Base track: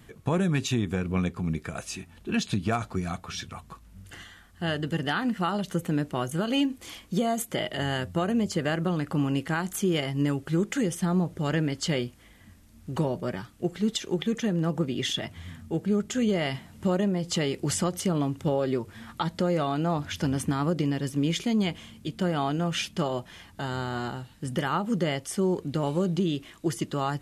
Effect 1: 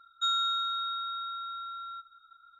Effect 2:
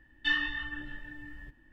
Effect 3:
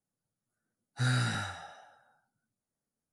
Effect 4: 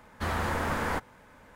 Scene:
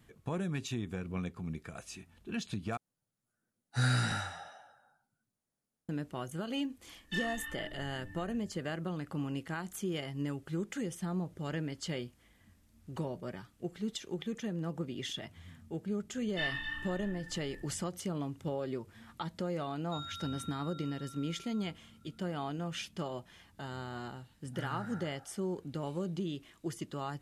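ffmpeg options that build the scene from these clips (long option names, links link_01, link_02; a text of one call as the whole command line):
ffmpeg -i bed.wav -i cue0.wav -i cue1.wav -i cue2.wav -filter_complex "[3:a]asplit=2[link_01][link_02];[2:a]asplit=2[link_03][link_04];[0:a]volume=-10.5dB[link_05];[link_03]asoftclip=type=tanh:threshold=-24dB[link_06];[link_04]aecho=1:1:32.07|262.4:0.794|0.447[link_07];[link_02]highshelf=frequency=2100:width_type=q:width=1.5:gain=-12[link_08];[link_05]asplit=2[link_09][link_10];[link_09]atrim=end=2.774[link_11];[link_01]atrim=end=3.12[link_12];[link_10]atrim=start=5.886[link_13];[link_06]atrim=end=1.72,asetpts=PTS-STARTPTS,volume=-6.5dB,afade=type=in:duration=0.004:curve=hsin,afade=type=out:start_time=1.716:duration=0.004:curve=hsin,adelay=6870[link_14];[link_07]atrim=end=1.72,asetpts=PTS-STARTPTS,volume=-8.5dB,afade=type=in:duration=0.004:curve=hsin,afade=type=out:start_time=1.716:duration=0.004:curve=hsin,adelay=16120[link_15];[1:a]atrim=end=2.59,asetpts=PTS-STARTPTS,volume=-16.5dB,afade=type=in:duration=0.004:curve=hsin,afade=type=out:start_time=2.586:duration=0.004:curve=hsin,adelay=19700[link_16];[link_08]atrim=end=3.12,asetpts=PTS-STARTPTS,volume=-13.5dB,afade=type=in:duration=0.004:curve=hsin,afade=type=out:start_time=3.116:duration=0.004:curve=hsin,adelay=23570[link_17];[link_11][link_12]acrossfade=duration=0.004:curve1=hsin:curve2=hsin[link_18];[link_18][link_13]acrossfade=duration=0.004:curve1=hsin:curve2=hsin[link_19];[link_19][link_14][link_15][link_16][link_17]amix=inputs=5:normalize=0" out.wav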